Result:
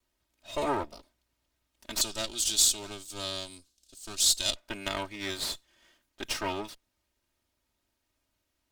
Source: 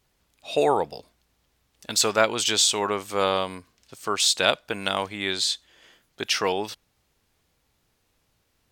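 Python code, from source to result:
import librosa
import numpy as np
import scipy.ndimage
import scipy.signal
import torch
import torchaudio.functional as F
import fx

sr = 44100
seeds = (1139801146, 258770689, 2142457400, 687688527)

y = fx.lower_of_two(x, sr, delay_ms=3.2)
y = fx.graphic_eq(y, sr, hz=(125, 250, 500, 1000, 2000, 4000, 8000), db=(-7, -4, -6, -11, -12, 7, 9), at=(2.01, 4.56))
y = y * 10.0 ** (-7.5 / 20.0)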